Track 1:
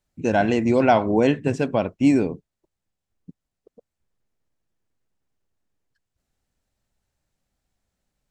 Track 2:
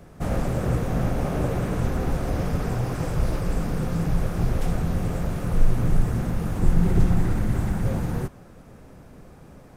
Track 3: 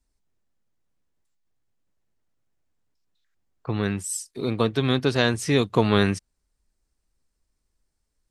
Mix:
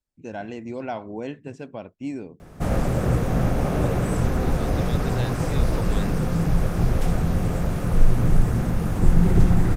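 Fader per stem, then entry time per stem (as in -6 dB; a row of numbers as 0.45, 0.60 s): -14.0, +2.5, -14.0 dB; 0.00, 2.40, 0.00 s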